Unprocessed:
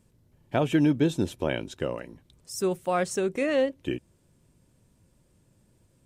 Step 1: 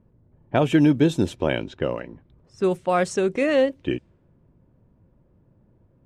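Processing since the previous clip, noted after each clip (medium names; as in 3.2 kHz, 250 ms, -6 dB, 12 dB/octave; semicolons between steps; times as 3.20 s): level-controlled noise filter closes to 1.1 kHz, open at -22 dBFS; treble shelf 9.9 kHz -6.5 dB; trim +5 dB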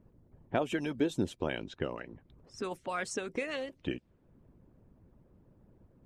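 harmonic-percussive split harmonic -15 dB; compression 1.5:1, threshold -51 dBFS, peak gain reduction 13 dB; trim +3 dB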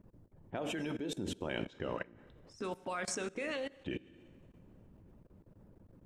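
two-slope reverb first 0.95 s, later 3 s, from -21 dB, DRR 11 dB; level held to a coarse grid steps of 21 dB; trim +4.5 dB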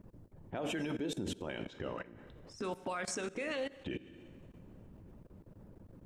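peak limiter -33.5 dBFS, peak gain reduction 11 dB; trim +4.5 dB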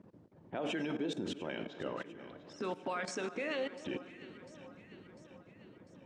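band-pass 170–5200 Hz; echo whose repeats swap between lows and highs 349 ms, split 1.4 kHz, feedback 75%, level -13 dB; trim +1 dB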